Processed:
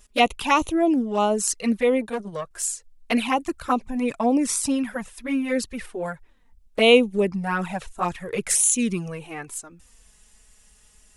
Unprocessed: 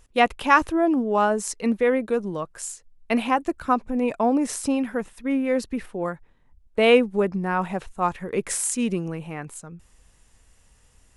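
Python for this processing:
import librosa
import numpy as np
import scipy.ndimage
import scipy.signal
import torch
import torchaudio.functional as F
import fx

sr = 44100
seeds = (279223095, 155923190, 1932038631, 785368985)

y = fx.high_shelf(x, sr, hz=2400.0, db=9.0)
y = fx.env_flanger(y, sr, rest_ms=5.0, full_db=-15.5)
y = fx.transformer_sat(y, sr, knee_hz=790.0, at=(2.01, 2.51))
y = y * librosa.db_to_amplitude(1.5)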